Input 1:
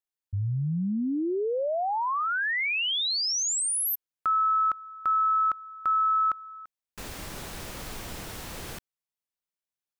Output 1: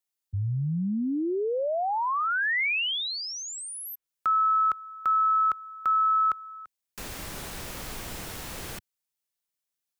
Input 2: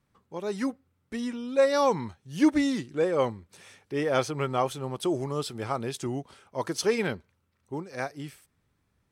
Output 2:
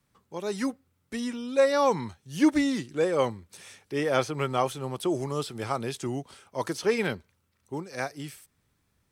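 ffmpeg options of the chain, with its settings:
-filter_complex "[0:a]highshelf=f=3400:g=7.5,acrossover=split=100|1500|2800[s0][s1][s2][s3];[s3]acompressor=threshold=0.0112:ratio=6:attack=6.3:release=177:detection=peak[s4];[s0][s1][s2][s4]amix=inputs=4:normalize=0"

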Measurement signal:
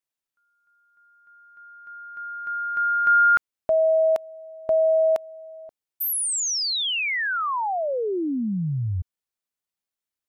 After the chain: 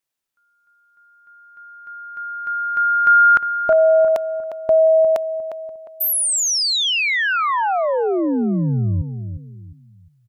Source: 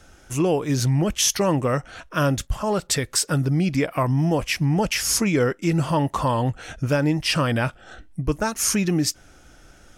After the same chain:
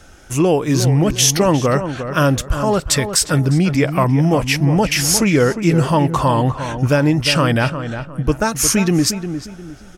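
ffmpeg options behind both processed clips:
-filter_complex "[0:a]asplit=2[s0][s1];[s1]adelay=355,lowpass=f=1900:p=1,volume=0.355,asplit=2[s2][s3];[s3]adelay=355,lowpass=f=1900:p=1,volume=0.33,asplit=2[s4][s5];[s5]adelay=355,lowpass=f=1900:p=1,volume=0.33,asplit=2[s6][s7];[s7]adelay=355,lowpass=f=1900:p=1,volume=0.33[s8];[s0][s2][s4][s6][s8]amix=inputs=5:normalize=0,volume=2"

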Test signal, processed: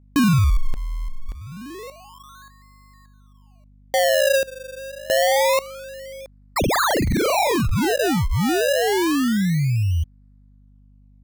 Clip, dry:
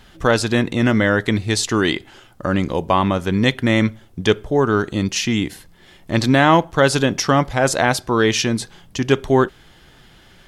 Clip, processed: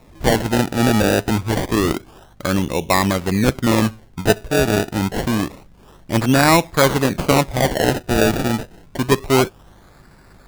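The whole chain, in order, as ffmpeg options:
-af "acrusher=samples=28:mix=1:aa=0.000001:lfo=1:lforange=28:lforate=0.27,aeval=exprs='val(0)+0.00316*(sin(2*PI*50*n/s)+sin(2*PI*2*50*n/s)/2+sin(2*PI*3*50*n/s)/3+sin(2*PI*4*50*n/s)/4+sin(2*PI*5*50*n/s)/5)':c=same"

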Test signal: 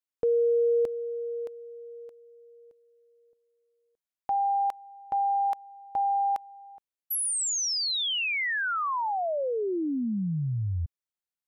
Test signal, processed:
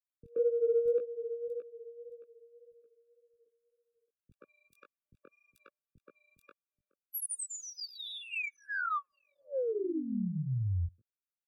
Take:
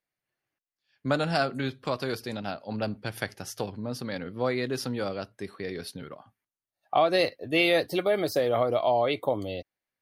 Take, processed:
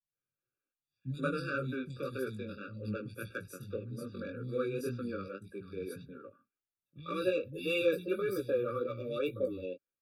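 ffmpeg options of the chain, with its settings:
-filter_complex "[0:a]acrossover=split=210|3600[s0][s1][s2];[s2]adelay=30[s3];[s1]adelay=130[s4];[s0][s4][s3]amix=inputs=3:normalize=0,flanger=delay=15.5:depth=6.6:speed=1.8,acrossover=split=100|6800[s5][s6][s7];[s6]adynamicsmooth=sensitivity=2:basefreq=4000[s8];[s5][s8][s7]amix=inputs=3:normalize=0,afftfilt=real='re*eq(mod(floor(b*sr/1024/560),2),0)':imag='im*eq(mod(floor(b*sr/1024/560),2),0)':win_size=1024:overlap=0.75,volume=0.841"

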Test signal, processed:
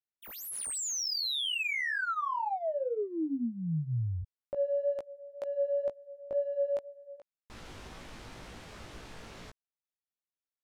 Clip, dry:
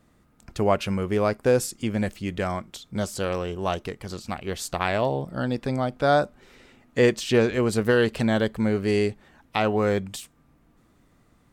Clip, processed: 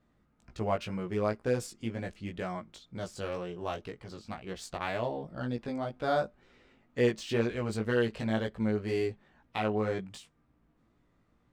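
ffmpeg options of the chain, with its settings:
-af "adynamicsmooth=sensitivity=6:basefreq=5500,flanger=delay=16.5:depth=2.6:speed=2,volume=0.501"

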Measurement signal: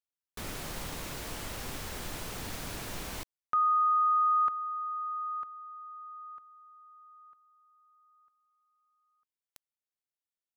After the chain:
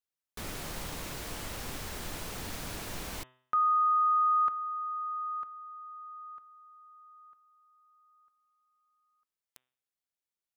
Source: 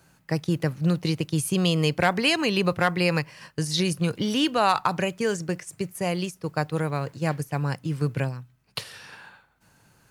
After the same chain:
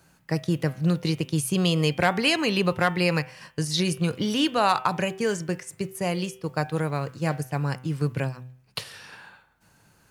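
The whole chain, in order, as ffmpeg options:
-af "bandreject=f=127.8:t=h:w=4,bandreject=f=255.6:t=h:w=4,bandreject=f=383.4:t=h:w=4,bandreject=f=511.2:t=h:w=4,bandreject=f=639:t=h:w=4,bandreject=f=766.8:t=h:w=4,bandreject=f=894.6:t=h:w=4,bandreject=f=1022.4:t=h:w=4,bandreject=f=1150.2:t=h:w=4,bandreject=f=1278:t=h:w=4,bandreject=f=1405.8:t=h:w=4,bandreject=f=1533.6:t=h:w=4,bandreject=f=1661.4:t=h:w=4,bandreject=f=1789.2:t=h:w=4,bandreject=f=1917:t=h:w=4,bandreject=f=2044.8:t=h:w=4,bandreject=f=2172.6:t=h:w=4,bandreject=f=2300.4:t=h:w=4,bandreject=f=2428.2:t=h:w=4,bandreject=f=2556:t=h:w=4,bandreject=f=2683.8:t=h:w=4,bandreject=f=2811.6:t=h:w=4,bandreject=f=2939.4:t=h:w=4,bandreject=f=3067.2:t=h:w=4,bandreject=f=3195:t=h:w=4,bandreject=f=3322.8:t=h:w=4,bandreject=f=3450.6:t=h:w=4,bandreject=f=3578.4:t=h:w=4,bandreject=f=3706.2:t=h:w=4"

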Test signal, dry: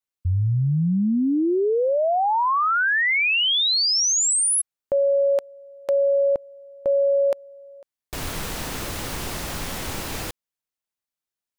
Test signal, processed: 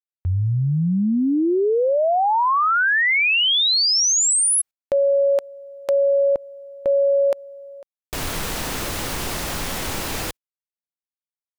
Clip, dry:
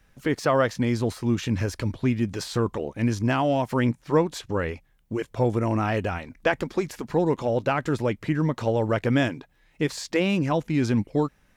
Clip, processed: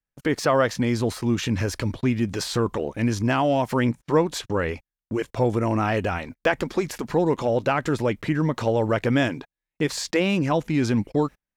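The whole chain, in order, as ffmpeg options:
-filter_complex "[0:a]agate=range=0.0178:threshold=0.00562:ratio=16:release=69:detection=rms,equalizer=f=92:t=o:w=2.8:g=-2.5,asplit=2[s0][s1];[s1]acompressor=threshold=0.0398:ratio=6:attack=0.84:release=137:detection=peak,volume=0.891[s2];[s0][s2]amix=inputs=2:normalize=0"

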